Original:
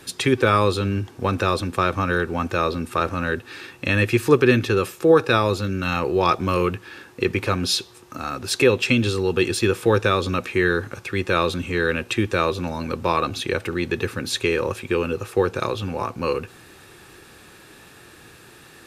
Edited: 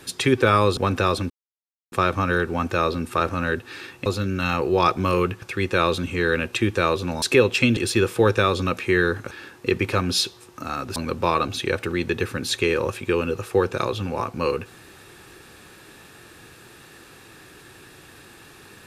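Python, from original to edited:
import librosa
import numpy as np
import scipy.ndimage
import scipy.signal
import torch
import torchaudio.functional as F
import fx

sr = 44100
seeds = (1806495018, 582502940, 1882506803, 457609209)

y = fx.edit(x, sr, fx.cut(start_s=0.77, length_s=0.42),
    fx.insert_silence(at_s=1.72, length_s=0.62),
    fx.cut(start_s=3.86, length_s=1.63),
    fx.swap(start_s=6.85, length_s=1.65, other_s=10.98, other_length_s=1.8),
    fx.cut(start_s=9.05, length_s=0.39), tone=tone)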